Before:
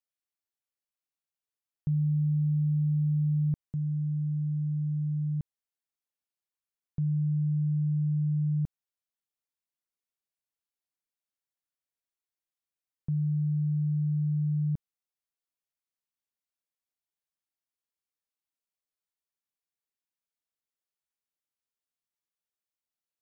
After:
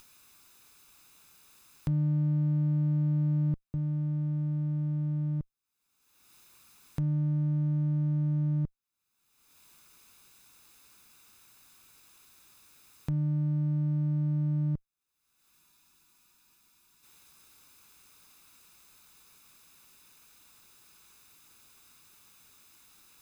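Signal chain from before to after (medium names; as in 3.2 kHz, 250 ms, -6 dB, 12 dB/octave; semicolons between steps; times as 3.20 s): comb filter that takes the minimum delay 0.79 ms; upward compressor, threshold -31 dBFS; spectral freeze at 15.54 s, 1.50 s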